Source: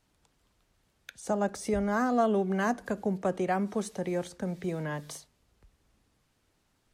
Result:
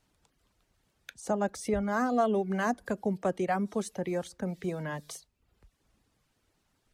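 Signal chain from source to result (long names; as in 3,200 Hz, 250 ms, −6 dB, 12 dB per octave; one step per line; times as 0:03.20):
reverb reduction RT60 0.55 s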